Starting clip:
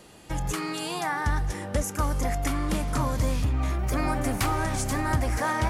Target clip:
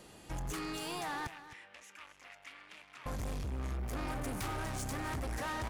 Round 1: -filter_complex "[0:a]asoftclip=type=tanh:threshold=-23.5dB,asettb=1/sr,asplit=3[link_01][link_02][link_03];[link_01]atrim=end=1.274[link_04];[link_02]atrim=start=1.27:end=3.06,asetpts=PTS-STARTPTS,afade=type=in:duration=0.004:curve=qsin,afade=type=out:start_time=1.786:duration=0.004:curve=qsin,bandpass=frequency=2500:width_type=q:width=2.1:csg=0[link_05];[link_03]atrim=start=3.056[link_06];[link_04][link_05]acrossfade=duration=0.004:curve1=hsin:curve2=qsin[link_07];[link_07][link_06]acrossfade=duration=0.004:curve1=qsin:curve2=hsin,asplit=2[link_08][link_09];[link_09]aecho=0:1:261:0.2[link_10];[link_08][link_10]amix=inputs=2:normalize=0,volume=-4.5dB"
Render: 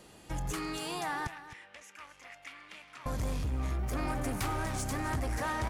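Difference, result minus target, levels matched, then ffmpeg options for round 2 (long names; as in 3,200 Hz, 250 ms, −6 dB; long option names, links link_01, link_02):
soft clipping: distortion −6 dB
-filter_complex "[0:a]asoftclip=type=tanh:threshold=-31dB,asettb=1/sr,asplit=3[link_01][link_02][link_03];[link_01]atrim=end=1.274[link_04];[link_02]atrim=start=1.27:end=3.06,asetpts=PTS-STARTPTS,afade=type=in:duration=0.004:curve=qsin,afade=type=out:start_time=1.786:duration=0.004:curve=qsin,bandpass=frequency=2500:width_type=q:width=2.1:csg=0[link_05];[link_03]atrim=start=3.056[link_06];[link_04][link_05]acrossfade=duration=0.004:curve1=hsin:curve2=qsin[link_07];[link_07][link_06]acrossfade=duration=0.004:curve1=qsin:curve2=hsin,asplit=2[link_08][link_09];[link_09]aecho=0:1:261:0.2[link_10];[link_08][link_10]amix=inputs=2:normalize=0,volume=-4.5dB"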